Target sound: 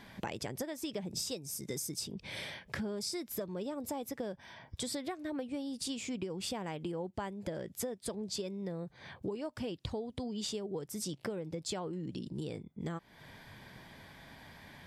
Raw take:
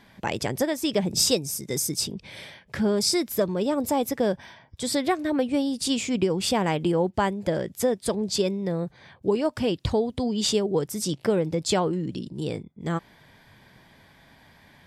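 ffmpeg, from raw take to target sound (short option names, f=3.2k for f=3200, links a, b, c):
-af "acompressor=threshold=-38dB:ratio=6,volume=1dB"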